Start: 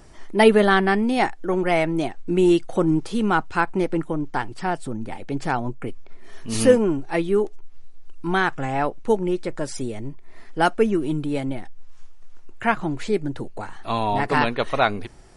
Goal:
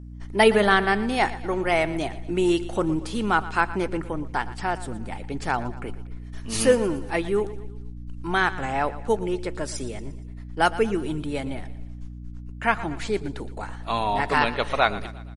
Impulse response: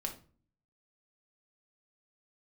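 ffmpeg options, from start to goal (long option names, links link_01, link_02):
-filter_complex "[0:a]lowshelf=frequency=470:gain=-8,agate=range=-23dB:threshold=-39dB:ratio=16:detection=peak,aeval=exprs='val(0)+0.0112*(sin(2*PI*60*n/s)+sin(2*PI*2*60*n/s)/2+sin(2*PI*3*60*n/s)/3+sin(2*PI*4*60*n/s)/4+sin(2*PI*5*60*n/s)/5)':channel_layout=same,aecho=1:1:117|234|351|468:0.158|0.0777|0.0381|0.0186,asplit=2[link_01][link_02];[1:a]atrim=start_sample=2205[link_03];[link_02][link_03]afir=irnorm=-1:irlink=0,volume=-19dB[link_04];[link_01][link_04]amix=inputs=2:normalize=0"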